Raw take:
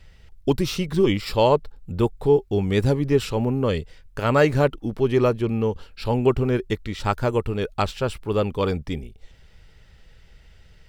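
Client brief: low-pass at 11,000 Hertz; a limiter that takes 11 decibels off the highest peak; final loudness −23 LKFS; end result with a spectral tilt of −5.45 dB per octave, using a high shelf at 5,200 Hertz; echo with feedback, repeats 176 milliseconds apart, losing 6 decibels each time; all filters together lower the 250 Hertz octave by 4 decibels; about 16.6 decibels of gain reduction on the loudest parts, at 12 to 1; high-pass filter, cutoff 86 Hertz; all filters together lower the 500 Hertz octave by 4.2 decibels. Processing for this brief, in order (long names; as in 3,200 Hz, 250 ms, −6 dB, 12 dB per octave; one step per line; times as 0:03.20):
high-pass filter 86 Hz
low-pass filter 11,000 Hz
parametric band 250 Hz −4 dB
parametric band 500 Hz −4 dB
high-shelf EQ 5,200 Hz +5 dB
downward compressor 12 to 1, threshold −33 dBFS
brickwall limiter −30.5 dBFS
repeating echo 176 ms, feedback 50%, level −6 dB
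level +17 dB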